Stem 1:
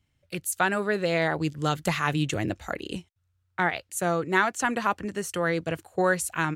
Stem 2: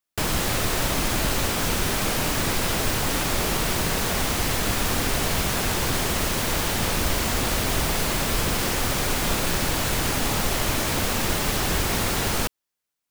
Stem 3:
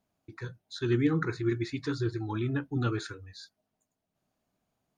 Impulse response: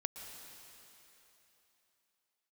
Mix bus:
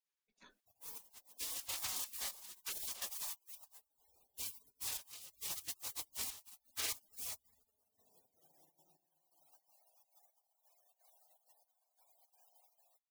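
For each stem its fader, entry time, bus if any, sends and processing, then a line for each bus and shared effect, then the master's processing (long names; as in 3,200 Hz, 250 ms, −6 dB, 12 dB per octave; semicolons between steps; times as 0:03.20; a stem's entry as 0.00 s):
−2.0 dB, 0.80 s, send −11.5 dB, low-pass filter 1,500 Hz 12 dB per octave
−3.5 dB, 0.50 s, send −17 dB, spectral envelope exaggerated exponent 1.5; Butterworth high-pass 1,400 Hz 36 dB per octave
−7.5 dB, 0.00 s, no send, low shelf with overshoot 130 Hz +10 dB, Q 3; brickwall limiter −23 dBFS, peak gain reduction 10.5 dB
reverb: on, RT60 3.3 s, pre-delay 109 ms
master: gate pattern "xxx.xxxx.xx...." 169 BPM −12 dB; gate on every frequency bin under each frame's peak −30 dB weak; notch filter 1,400 Hz, Q 18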